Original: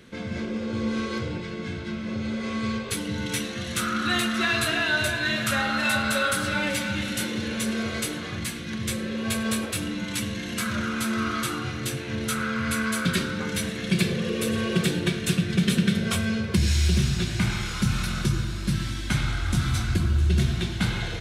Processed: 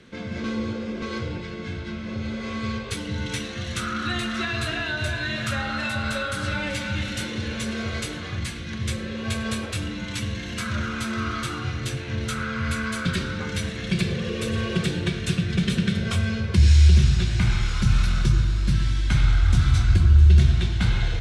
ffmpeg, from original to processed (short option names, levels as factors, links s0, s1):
-filter_complex "[0:a]asplit=3[s0][s1][s2];[s0]atrim=end=0.442[s3];[s1]atrim=start=0.438:end=1.022,asetpts=PTS-STARTPTS,areverse[s4];[s2]atrim=start=1.018[s5];[s3][s4]acrossfade=d=0.004:c1=hsin:c2=hsin[s6];[s6][s5]acrossfade=d=0.004:c1=hsin:c2=hsin,lowpass=7400,asubboost=boost=4:cutoff=97,acrossover=split=470[s7][s8];[s8]acompressor=threshold=0.0501:ratio=6[s9];[s7][s9]amix=inputs=2:normalize=0"